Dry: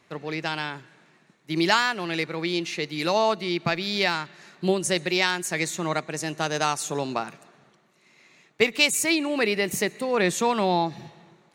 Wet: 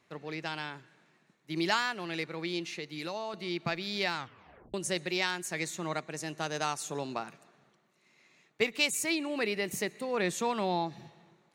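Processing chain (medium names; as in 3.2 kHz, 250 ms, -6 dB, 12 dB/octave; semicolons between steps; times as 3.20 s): 2.69–3.34 s: compression 3:1, threshold -28 dBFS, peak gain reduction 8.5 dB; 4.16 s: tape stop 0.58 s; trim -8 dB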